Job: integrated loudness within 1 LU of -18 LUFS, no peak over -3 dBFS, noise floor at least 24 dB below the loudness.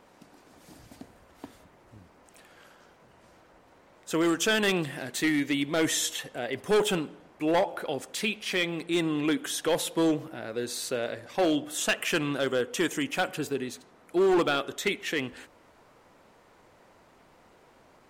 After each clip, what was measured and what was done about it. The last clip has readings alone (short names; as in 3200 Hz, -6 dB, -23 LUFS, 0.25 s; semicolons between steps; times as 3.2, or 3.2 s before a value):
clipped 1.0%; flat tops at -19.0 dBFS; loudness -28.0 LUFS; peak -19.0 dBFS; loudness target -18.0 LUFS
-> clip repair -19 dBFS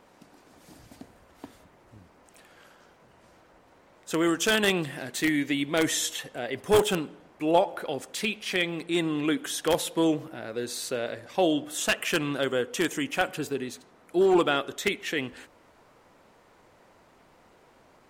clipped 0.0%; loudness -27.0 LUFS; peak -10.0 dBFS; loudness target -18.0 LUFS
-> gain +9 dB; limiter -3 dBFS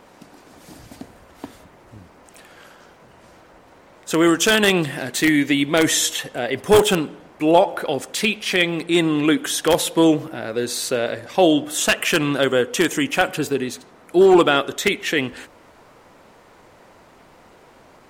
loudness -18.5 LUFS; peak -3.0 dBFS; noise floor -50 dBFS